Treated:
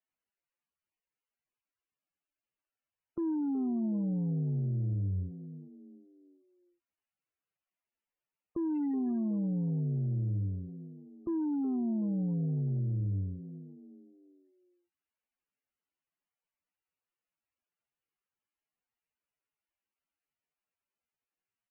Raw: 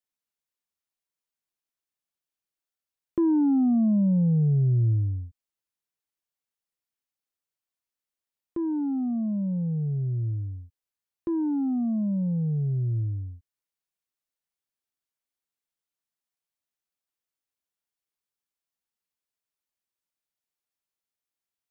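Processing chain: 8.75–10.59 s: dead-time distortion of 0.095 ms; peak limiter -28.5 dBFS, peak gain reduction 10 dB; frequency-shifting echo 371 ms, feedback 38%, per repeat +65 Hz, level -13.5 dB; MP3 8 kbps 22.05 kHz

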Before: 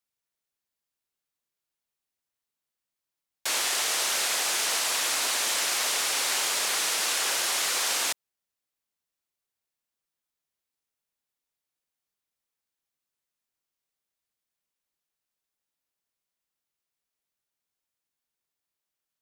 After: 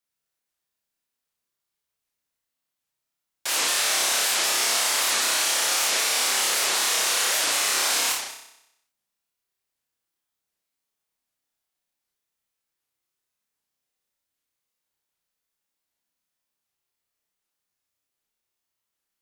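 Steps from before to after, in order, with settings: flutter echo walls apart 5.3 m, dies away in 0.82 s; warped record 78 rpm, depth 250 cents

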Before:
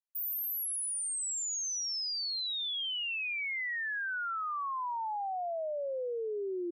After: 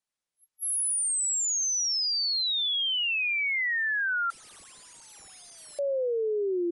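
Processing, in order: wow and flutter 26 cents; 4.30–5.79 s: integer overflow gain 48 dB; trim +8 dB; MP3 112 kbps 24 kHz

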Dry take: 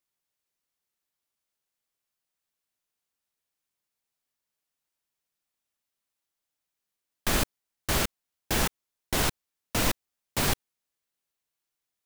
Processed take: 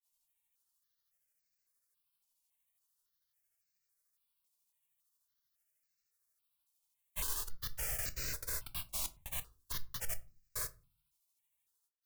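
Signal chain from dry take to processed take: comb filter that takes the minimum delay 1.9 ms; granulator 148 ms, grains 13 per s, spray 281 ms, pitch spread up and down by 3 st; compression, threshold -32 dBFS, peak gain reduction 8.5 dB; treble shelf 5.9 kHz +11.5 dB; peak limiter -28 dBFS, peak gain reduction 13.5 dB; peaking EQ 390 Hz -6.5 dB 1.7 oct; simulated room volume 160 m³, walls furnished, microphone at 0.44 m; stepped phaser 3.6 Hz 450–3300 Hz; trim +2 dB

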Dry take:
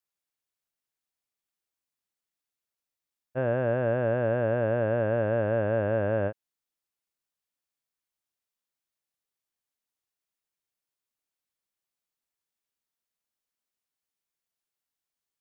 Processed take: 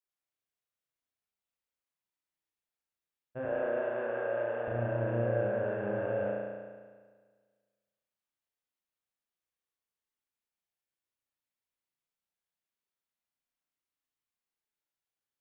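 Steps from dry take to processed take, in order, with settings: 3.45–4.68 s: high-pass 400 Hz 12 dB/octave; peak limiter -21.5 dBFS, peak gain reduction 5 dB; spring tank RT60 1.6 s, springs 34 ms, chirp 30 ms, DRR -4 dB; trim -8 dB

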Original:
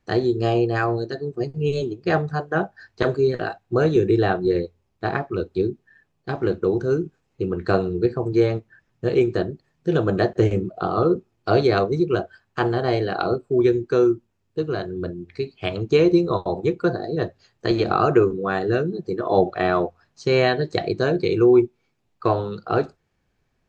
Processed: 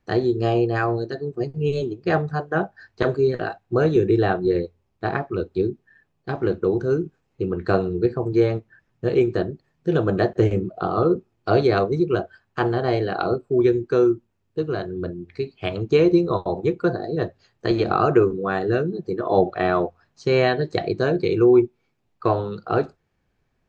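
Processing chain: treble shelf 4.2 kHz -5.5 dB

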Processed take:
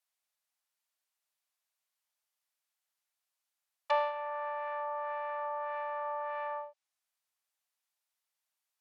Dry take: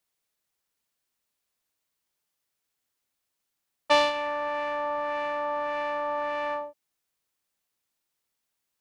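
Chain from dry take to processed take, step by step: low-pass that closes with the level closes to 1.3 kHz, closed at -25.5 dBFS; steep high-pass 590 Hz 36 dB/octave; trim -5 dB

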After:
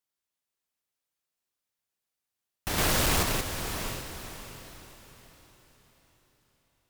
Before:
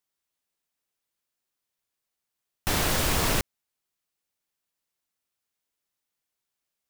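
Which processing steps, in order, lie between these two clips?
echo that smears into a reverb 540 ms, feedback 40%, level -5 dB; one-sided clip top -21.5 dBFS; 2.78–3.23 s: waveshaping leveller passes 2; trim -4 dB

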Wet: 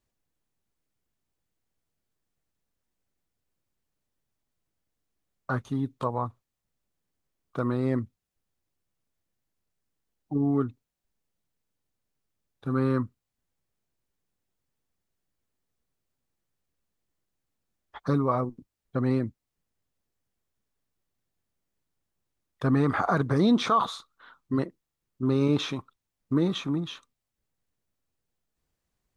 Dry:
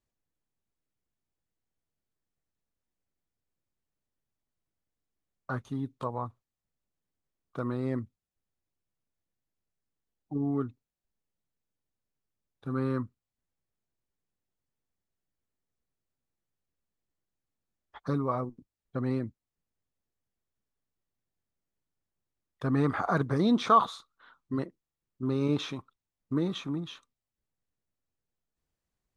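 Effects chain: peak limiter -18.5 dBFS, peak gain reduction 8 dB; trim +5 dB

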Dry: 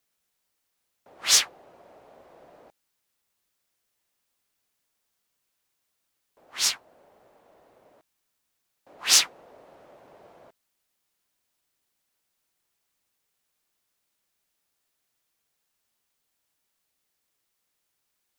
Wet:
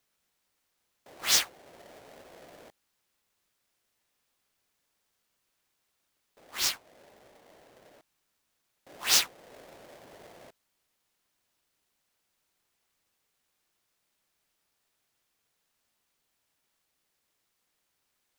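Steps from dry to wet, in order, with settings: square wave that keeps the level; in parallel at -1 dB: compression, threshold -35 dBFS, peak gain reduction 22 dB; on the sum: trim -8.5 dB

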